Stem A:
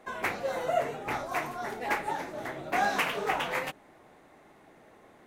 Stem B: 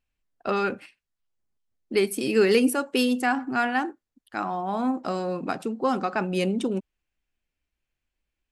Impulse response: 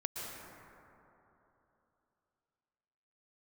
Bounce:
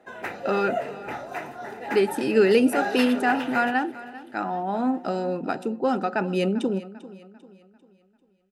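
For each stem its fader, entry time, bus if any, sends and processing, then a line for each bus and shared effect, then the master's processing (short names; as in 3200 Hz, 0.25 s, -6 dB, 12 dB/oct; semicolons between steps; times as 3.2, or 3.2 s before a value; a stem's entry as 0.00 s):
0.0 dB, 0.00 s, no send, echo send -17 dB, dry
+2.0 dB, 0.00 s, no send, echo send -17.5 dB, dry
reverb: off
echo: feedback echo 0.395 s, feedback 42%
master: high shelf 4400 Hz -7.5 dB; notch comb 1100 Hz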